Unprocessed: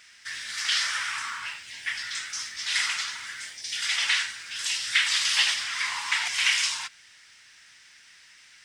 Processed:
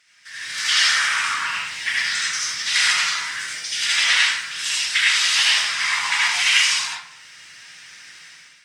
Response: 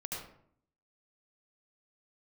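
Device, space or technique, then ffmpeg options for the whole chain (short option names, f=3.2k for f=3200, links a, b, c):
far-field microphone of a smart speaker: -filter_complex "[0:a]lowshelf=f=81:g=-5[a];[1:a]atrim=start_sample=2205[b];[a][b]afir=irnorm=-1:irlink=0,highpass=f=86:w=0.5412,highpass=f=86:w=1.3066,dynaudnorm=f=190:g=5:m=13.5dB,volume=-2.5dB" -ar 48000 -c:a libopus -b:a 48k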